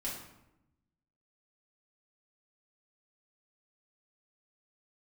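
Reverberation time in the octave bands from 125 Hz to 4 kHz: 1.4, 1.2, 0.90, 0.85, 0.75, 0.60 seconds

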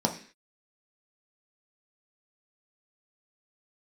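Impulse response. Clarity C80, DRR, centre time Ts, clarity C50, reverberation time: 15.5 dB, 1.5 dB, 13 ms, 11.0 dB, 0.45 s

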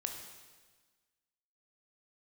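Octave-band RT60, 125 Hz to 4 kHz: 1.5, 1.6, 1.4, 1.4, 1.4, 1.4 seconds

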